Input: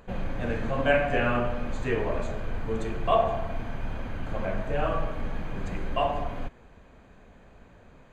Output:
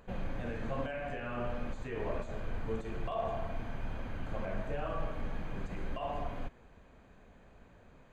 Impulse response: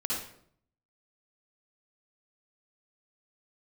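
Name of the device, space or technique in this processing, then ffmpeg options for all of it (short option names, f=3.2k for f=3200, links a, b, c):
de-esser from a sidechain: -filter_complex "[0:a]asplit=2[a][b];[b]highpass=6.2k,apad=whole_len=358400[c];[a][c]sidechaincompress=threshold=-60dB:ratio=4:attack=2.1:release=40,volume=-5.5dB"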